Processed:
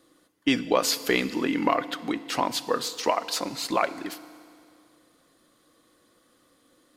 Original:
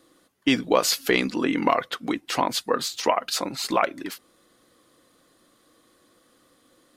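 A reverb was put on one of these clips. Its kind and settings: FDN reverb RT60 2.2 s, low-frequency decay 1.05×, high-frequency decay 1×, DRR 14 dB; trim -2.5 dB

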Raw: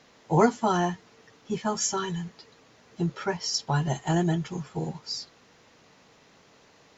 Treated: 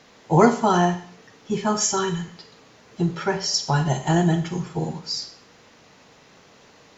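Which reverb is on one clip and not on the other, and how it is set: Schroeder reverb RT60 0.5 s, combs from 30 ms, DRR 8 dB; trim +5 dB

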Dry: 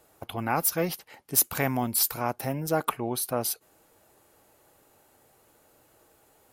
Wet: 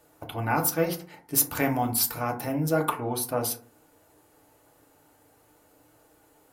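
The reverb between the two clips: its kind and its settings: FDN reverb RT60 0.45 s, low-frequency decay 1.3×, high-frequency decay 0.4×, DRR 2 dB; trim -1.5 dB

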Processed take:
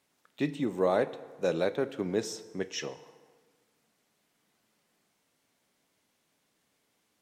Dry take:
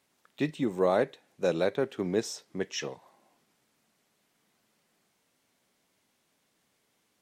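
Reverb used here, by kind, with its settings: FDN reverb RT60 1.6 s, low-frequency decay 0.8×, high-frequency decay 0.65×, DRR 13 dB; trim -1.5 dB

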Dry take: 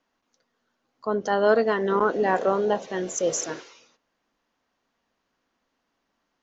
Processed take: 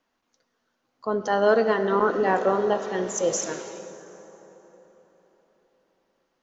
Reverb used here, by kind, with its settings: plate-style reverb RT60 4.1 s, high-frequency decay 0.6×, DRR 9 dB

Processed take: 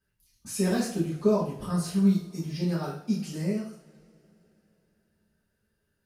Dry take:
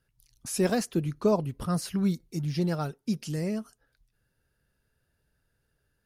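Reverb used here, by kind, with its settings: two-slope reverb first 0.5 s, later 3.7 s, from -27 dB, DRR -9.5 dB; trim -10.5 dB

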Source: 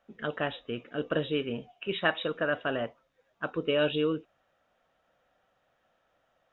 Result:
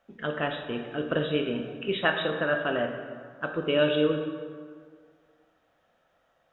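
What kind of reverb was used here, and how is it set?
plate-style reverb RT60 1.9 s, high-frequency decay 0.6×, DRR 4 dB; trim +1.5 dB

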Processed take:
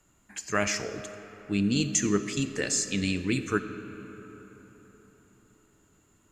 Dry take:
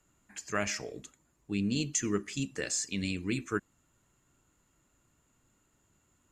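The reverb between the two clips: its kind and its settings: algorithmic reverb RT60 4.5 s, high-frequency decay 0.5×, pre-delay 10 ms, DRR 10 dB; trim +5 dB

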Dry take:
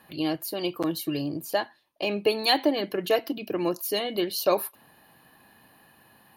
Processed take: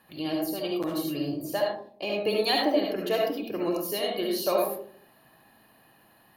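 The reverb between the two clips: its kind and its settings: algorithmic reverb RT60 0.55 s, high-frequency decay 0.3×, pre-delay 30 ms, DRR -1 dB; trim -5 dB

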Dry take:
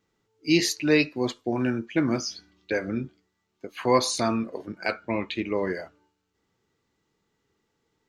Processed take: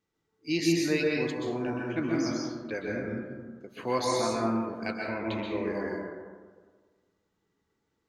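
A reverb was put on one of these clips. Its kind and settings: plate-style reverb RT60 1.6 s, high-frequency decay 0.3×, pre-delay 115 ms, DRR -3 dB; trim -8.5 dB

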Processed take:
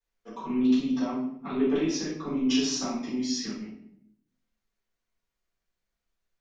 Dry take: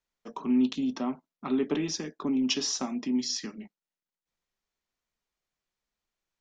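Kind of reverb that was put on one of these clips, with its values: simulated room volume 150 m³, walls mixed, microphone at 4.1 m; trim -12 dB

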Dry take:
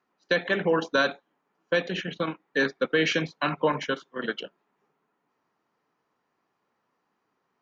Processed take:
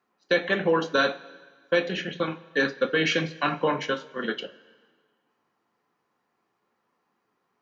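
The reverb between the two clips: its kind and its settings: two-slope reverb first 0.21 s, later 1.6 s, from -19 dB, DRR 5.5 dB

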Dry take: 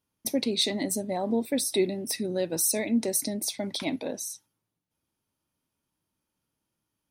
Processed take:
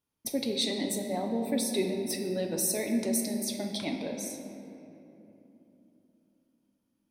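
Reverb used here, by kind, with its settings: simulated room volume 150 m³, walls hard, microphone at 0.31 m; trim -4.5 dB

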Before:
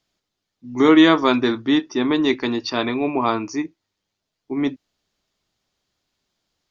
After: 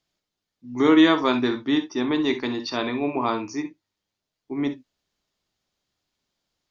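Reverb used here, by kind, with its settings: gated-style reverb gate 80 ms rising, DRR 9 dB; trim -4.5 dB

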